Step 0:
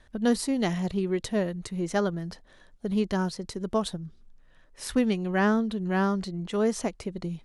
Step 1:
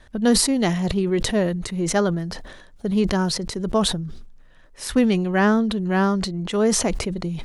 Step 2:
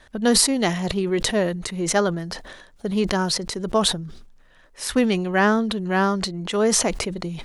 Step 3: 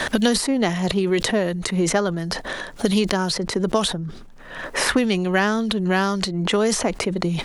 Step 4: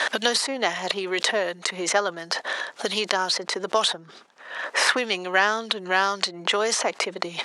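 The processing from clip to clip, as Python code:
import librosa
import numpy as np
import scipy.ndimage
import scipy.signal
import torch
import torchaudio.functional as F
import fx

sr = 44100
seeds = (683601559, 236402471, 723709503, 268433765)

y1 = fx.sustainer(x, sr, db_per_s=47.0)
y1 = y1 * librosa.db_to_amplitude(5.5)
y2 = fx.low_shelf(y1, sr, hz=290.0, db=-8.0)
y2 = y2 * librosa.db_to_amplitude(2.5)
y3 = fx.band_squash(y2, sr, depth_pct=100)
y4 = fx.bandpass_edges(y3, sr, low_hz=630.0, high_hz=7300.0)
y4 = y4 * librosa.db_to_amplitude(2.0)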